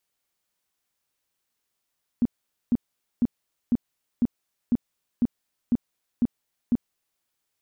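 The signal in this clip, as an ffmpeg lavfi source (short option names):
-f lavfi -i "aevalsrc='0.15*sin(2*PI*239*mod(t,0.5))*lt(mod(t,0.5),8/239)':d=5:s=44100"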